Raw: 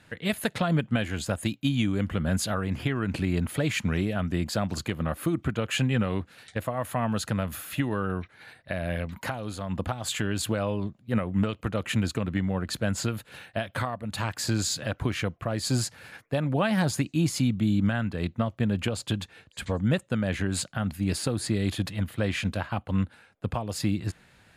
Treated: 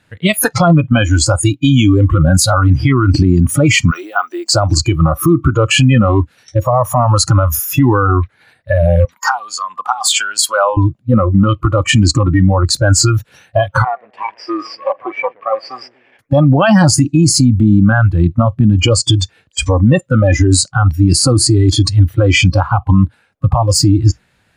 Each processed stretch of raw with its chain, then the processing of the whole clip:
0:03.91–0:04.52: Bessel high-pass filter 580 Hz, order 6 + floating-point word with a short mantissa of 4 bits
0:09.05–0:10.77: high-pass filter 720 Hz + notch filter 6,000 Hz, Q 27
0:13.84–0:16.19: lower of the sound and its delayed copy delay 0.39 ms + Chebyshev band-pass filter 490–2,100 Hz + feedback echo with a low-pass in the loop 121 ms, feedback 54%, low-pass 1,200 Hz, level −11.5 dB
whole clip: noise reduction from a noise print of the clip's start 24 dB; boost into a limiter +25 dB; level −1 dB

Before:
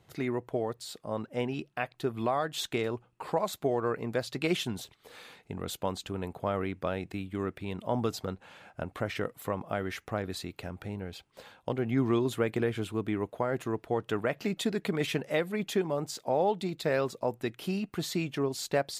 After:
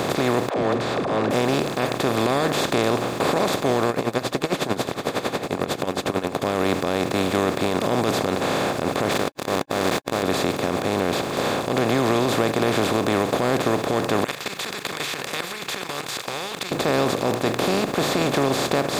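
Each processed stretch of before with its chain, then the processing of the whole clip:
0:00.49–0:01.31: volume swells 269 ms + low-pass filter 2,000 Hz 24 dB per octave + all-pass dispersion lows, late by 97 ms, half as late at 310 Hz
0:03.90–0:06.42: high-shelf EQ 2,200 Hz −7.5 dB + tremolo with a sine in dB 11 Hz, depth 40 dB
0:09.11–0:10.23: low-shelf EQ 340 Hz −8.5 dB + mains-hum notches 60/120/180/240/300/360/420/480/540 Hz + centre clipping without the shift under −37.5 dBFS
0:14.24–0:16.72: inverse Chebyshev high-pass filter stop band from 680 Hz, stop band 60 dB + output level in coarse steps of 22 dB
whole clip: compressor on every frequency bin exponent 0.2; brickwall limiter −11.5 dBFS; level +2 dB

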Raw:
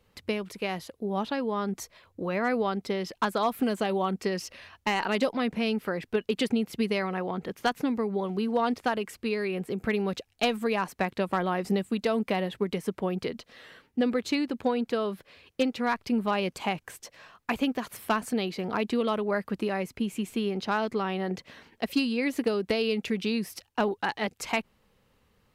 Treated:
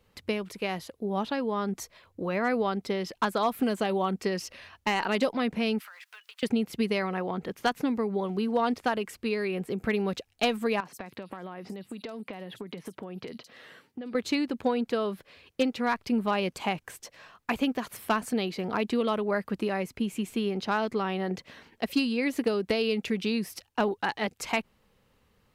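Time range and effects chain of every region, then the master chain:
0:05.80–0:06.43: mu-law and A-law mismatch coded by mu + high-pass filter 1,100 Hz 24 dB per octave + downward compressor 8 to 1, threshold −44 dBFS
0:10.80–0:14.15: high-pass filter 100 Hz 24 dB per octave + multiband delay without the direct sound lows, highs 50 ms, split 4,700 Hz + downward compressor 20 to 1, threshold −34 dBFS
whole clip: no processing

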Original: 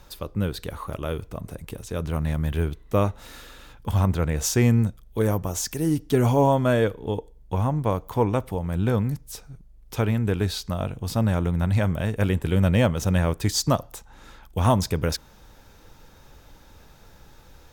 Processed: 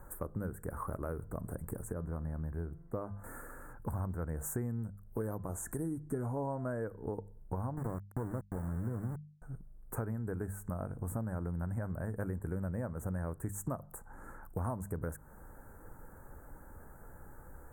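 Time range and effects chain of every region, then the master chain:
0:01.93–0:03.24: high-shelf EQ 2,300 Hz −9.5 dB + tuned comb filter 170 Hz, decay 0.77 s, mix 50%
0:05.35–0:06.82: low-pass filter 11,000 Hz + hum removal 339.3 Hz, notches 11
0:07.77–0:09.42: bass and treble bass +7 dB, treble −9 dB + tube saturation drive 13 dB, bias 0.5 + centre clipping without the shift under −26 dBFS
whole clip: elliptic band-stop filter 1,600–8,300 Hz, stop band 50 dB; mains-hum notches 50/100/150/200 Hz; downward compressor 6 to 1, threshold −34 dBFS; level −1 dB

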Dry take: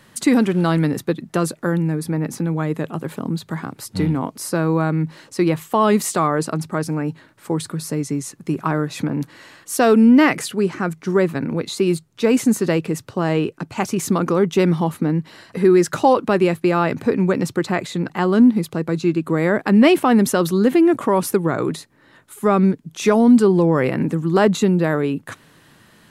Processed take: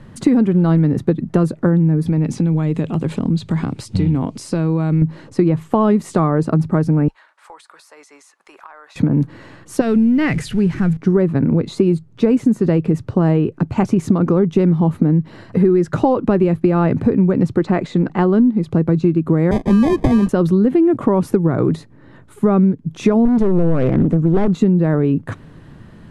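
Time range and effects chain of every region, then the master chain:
0:02.06–0:05.02: flat-topped bell 4,600 Hz +10.5 dB 2.3 octaves + downward compressor 3 to 1, threshold −25 dBFS
0:07.08–0:08.96: high-pass filter 830 Hz 24 dB per octave + downward compressor 4 to 1, threshold −40 dBFS
0:09.81–0:10.97: converter with a step at zero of −32.5 dBFS + flat-topped bell 550 Hz −10 dB 2.8 octaves
0:17.57–0:18.67: low-pass filter 8,200 Hz + parametric band 100 Hz −10.5 dB 1.2 octaves
0:19.51–0:20.29: variable-slope delta modulation 32 kbit/s + Chebyshev high-pass filter 170 Hz, order 10 + sample-rate reduction 1,400 Hz
0:23.25–0:24.58: hard clipping −13.5 dBFS + highs frequency-modulated by the lows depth 0.43 ms
whole clip: Butterworth low-pass 12,000 Hz 48 dB per octave; spectral tilt −4 dB per octave; downward compressor, threshold −14 dBFS; level +3 dB

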